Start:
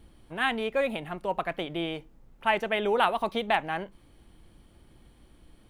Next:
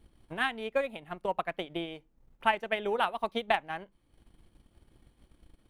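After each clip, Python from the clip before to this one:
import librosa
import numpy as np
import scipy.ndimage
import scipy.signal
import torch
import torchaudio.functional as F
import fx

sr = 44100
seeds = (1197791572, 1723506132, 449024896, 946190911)

y = fx.transient(x, sr, attack_db=8, sustain_db=-7)
y = y * librosa.db_to_amplitude(-7.0)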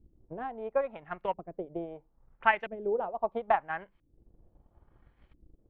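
y = fx.peak_eq(x, sr, hz=260.0, db=-5.5, octaves=1.2)
y = fx.filter_lfo_lowpass(y, sr, shape='saw_up', hz=0.75, low_hz=280.0, high_hz=2500.0, q=1.7)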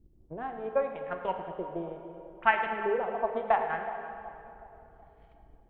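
y = fx.echo_split(x, sr, split_hz=880.0, low_ms=372, high_ms=108, feedback_pct=52, wet_db=-15.0)
y = fx.rev_plate(y, sr, seeds[0], rt60_s=2.6, hf_ratio=0.8, predelay_ms=0, drr_db=4.5)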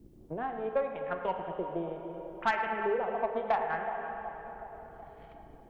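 y = 10.0 ** (-17.5 / 20.0) * np.tanh(x / 10.0 ** (-17.5 / 20.0))
y = fx.band_squash(y, sr, depth_pct=40)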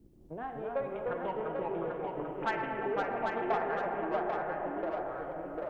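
y = fx.echo_pitch(x, sr, ms=208, semitones=-2, count=3, db_per_echo=-3.0)
y = y + 10.0 ** (-5.0 / 20.0) * np.pad(y, (int(791 * sr / 1000.0), 0))[:len(y)]
y = y * librosa.db_to_amplitude(-4.5)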